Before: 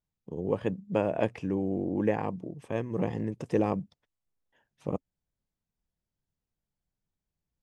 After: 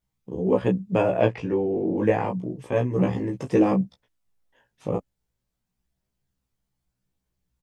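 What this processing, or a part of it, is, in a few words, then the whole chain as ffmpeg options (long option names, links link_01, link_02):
double-tracked vocal: -filter_complex "[0:a]asplit=2[link_01][link_02];[link_02]adelay=16,volume=-4.5dB[link_03];[link_01][link_03]amix=inputs=2:normalize=0,flanger=delay=15:depth=3.3:speed=0.3,asettb=1/sr,asplit=3[link_04][link_05][link_06];[link_04]atrim=end=1.224[link_07];[link_05]atrim=start=1.22:end=1.98,asetpts=PTS-STARTPTS,afade=type=in:duration=0.004:curve=qsin,afade=type=out:start_time=0.756:duration=0.004:curve=qsin,lowpass=5100[link_08];[link_06]atrim=start=1.976[link_09];[link_07][link_08]acrossfade=duration=0.004:curve1=hsin:curve2=qsin[link_10];[link_10][link_09]acrossfade=duration=0.004:curve1=qsin:curve2=hsin,volume=8.5dB"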